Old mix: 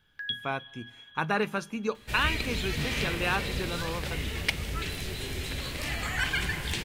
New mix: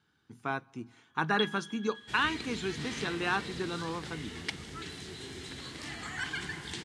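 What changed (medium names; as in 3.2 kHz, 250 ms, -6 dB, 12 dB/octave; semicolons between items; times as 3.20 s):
first sound: entry +1.10 s; second sound -5.5 dB; master: add cabinet simulation 130–9100 Hz, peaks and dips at 320 Hz +4 dB, 570 Hz -10 dB, 2.5 kHz -8 dB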